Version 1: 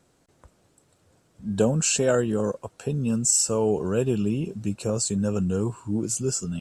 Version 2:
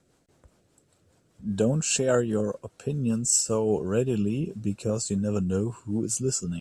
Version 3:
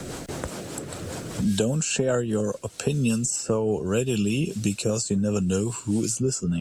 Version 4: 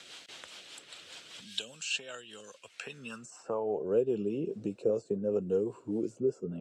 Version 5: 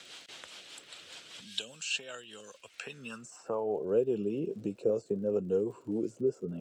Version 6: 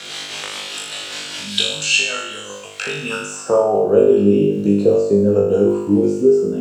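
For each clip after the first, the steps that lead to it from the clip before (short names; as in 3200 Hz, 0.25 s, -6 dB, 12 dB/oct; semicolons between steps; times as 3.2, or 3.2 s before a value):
rotary speaker horn 5 Hz
three-band squash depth 100%; gain +1.5 dB
band-pass sweep 3200 Hz -> 450 Hz, 2.5–3.97
crackle 65/s -53 dBFS
flutter echo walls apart 3.4 m, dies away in 0.83 s; in parallel at -2 dB: vocal rider within 5 dB 0.5 s; on the sum: gain +8 dB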